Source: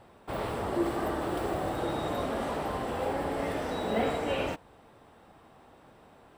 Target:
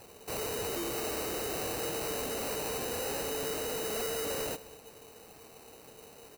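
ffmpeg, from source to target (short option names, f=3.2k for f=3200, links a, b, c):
-filter_complex "[0:a]equalizer=f=450:t=o:w=0.28:g=12.5,acrusher=samples=13:mix=1:aa=0.000001,asoftclip=type=tanh:threshold=-33.5dB,crystalizer=i=2:c=0,asplit=2[a][b];[b]aecho=0:1:201:0.112[c];[a][c]amix=inputs=2:normalize=0,volume=-1dB"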